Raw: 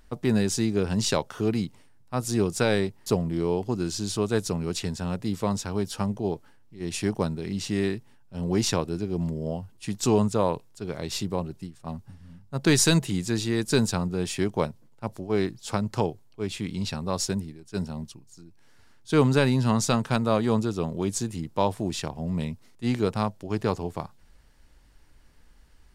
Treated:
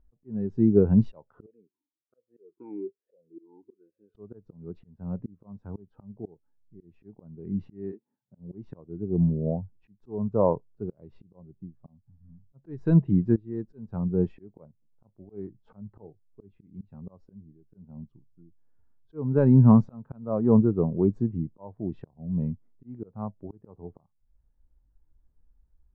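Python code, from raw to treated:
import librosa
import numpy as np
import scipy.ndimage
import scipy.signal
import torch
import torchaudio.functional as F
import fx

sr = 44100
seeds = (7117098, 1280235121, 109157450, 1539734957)

y = fx.vowel_sweep(x, sr, vowels='e-u', hz=1.2, at=(1.46, 4.15))
y = fx.highpass(y, sr, hz=fx.line((7.91, 280.0), (8.38, 84.0)), slope=24, at=(7.91, 8.38), fade=0.02)
y = fx.doubler(y, sr, ms=20.0, db=-13.0, at=(15.06, 16.96))
y = fx.edit(y, sr, fx.fade_in_from(start_s=13.36, length_s=0.64, floor_db=-20.5), tone=tone)
y = scipy.signal.sosfilt(scipy.signal.butter(2, 1200.0, 'lowpass', fs=sr, output='sos'), y)
y = fx.auto_swell(y, sr, attack_ms=479.0)
y = fx.spectral_expand(y, sr, expansion=1.5)
y = y * librosa.db_to_amplitude(5.0)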